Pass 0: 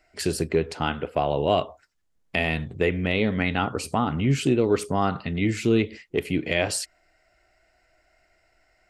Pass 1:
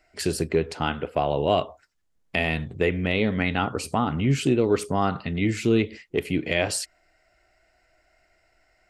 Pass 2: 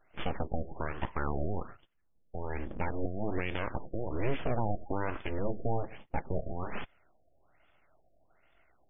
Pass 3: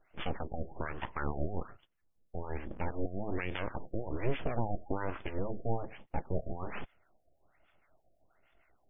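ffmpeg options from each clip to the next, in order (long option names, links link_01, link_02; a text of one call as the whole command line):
ffmpeg -i in.wav -af anull out.wav
ffmpeg -i in.wav -af "alimiter=limit=-18.5dB:level=0:latency=1:release=180,aeval=exprs='abs(val(0))':channel_layout=same,afftfilt=real='re*lt(b*sr/1024,720*pow(3600/720,0.5+0.5*sin(2*PI*1.2*pts/sr)))':imag='im*lt(b*sr/1024,720*pow(3600/720,0.5+0.5*sin(2*PI*1.2*pts/sr)))':win_size=1024:overlap=0.75" out.wav
ffmpeg -i in.wav -filter_complex "[0:a]acrossover=split=810[link_01][link_02];[link_01]aeval=exprs='val(0)*(1-0.7/2+0.7/2*cos(2*PI*6.3*n/s))':channel_layout=same[link_03];[link_02]aeval=exprs='val(0)*(1-0.7/2-0.7/2*cos(2*PI*6.3*n/s))':channel_layout=same[link_04];[link_03][link_04]amix=inputs=2:normalize=0,volume=1dB" out.wav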